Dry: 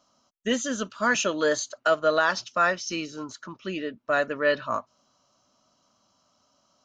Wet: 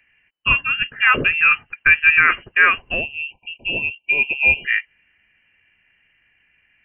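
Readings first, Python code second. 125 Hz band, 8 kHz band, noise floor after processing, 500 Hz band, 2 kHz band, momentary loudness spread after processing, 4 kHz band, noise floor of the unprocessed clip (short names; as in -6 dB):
+7.5 dB, under -40 dB, -64 dBFS, -9.0 dB, +14.0 dB, 11 LU, +6.5 dB, -69 dBFS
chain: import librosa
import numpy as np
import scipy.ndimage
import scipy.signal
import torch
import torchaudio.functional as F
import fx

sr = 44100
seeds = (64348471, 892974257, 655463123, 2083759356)

y = fx.spec_erase(x, sr, start_s=3.01, length_s=1.64, low_hz=690.0, high_hz=2000.0)
y = fx.freq_invert(y, sr, carrier_hz=3000)
y = y * 10.0 ** (8.5 / 20.0)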